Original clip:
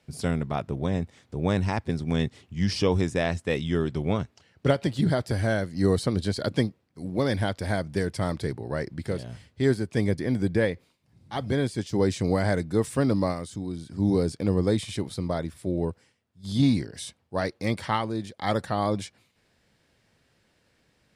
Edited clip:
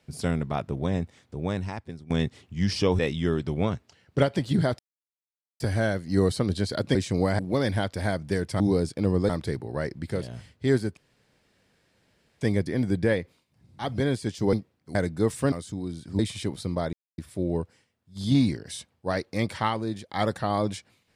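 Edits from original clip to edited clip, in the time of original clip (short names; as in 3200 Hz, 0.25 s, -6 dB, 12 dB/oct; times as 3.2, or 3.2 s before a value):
0.99–2.1 fade out, to -17 dB
2.99–3.47 cut
5.27 insert silence 0.81 s
6.62–7.04 swap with 12.05–12.49
9.93 insert room tone 1.44 s
13.06–13.36 cut
14.03–14.72 move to 8.25
15.46 insert silence 0.25 s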